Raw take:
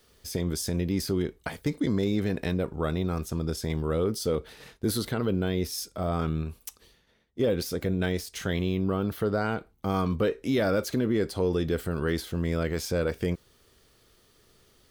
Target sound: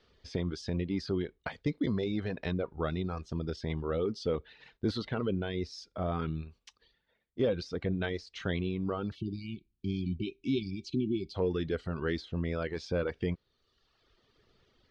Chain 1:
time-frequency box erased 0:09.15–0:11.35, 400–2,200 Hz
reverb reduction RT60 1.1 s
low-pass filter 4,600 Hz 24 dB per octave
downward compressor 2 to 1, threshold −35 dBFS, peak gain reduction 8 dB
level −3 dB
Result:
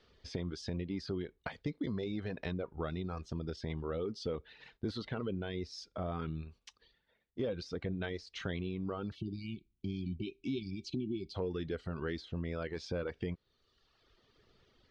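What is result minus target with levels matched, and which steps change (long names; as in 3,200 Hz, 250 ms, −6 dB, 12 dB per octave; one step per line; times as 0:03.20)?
downward compressor: peak gain reduction +8 dB
remove: downward compressor 2 to 1, threshold −35 dBFS, peak gain reduction 8 dB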